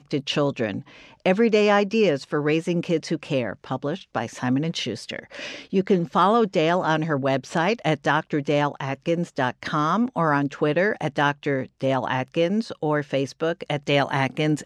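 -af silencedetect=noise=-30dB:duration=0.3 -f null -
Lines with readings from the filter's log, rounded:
silence_start: 0.80
silence_end: 1.26 | silence_duration: 0.46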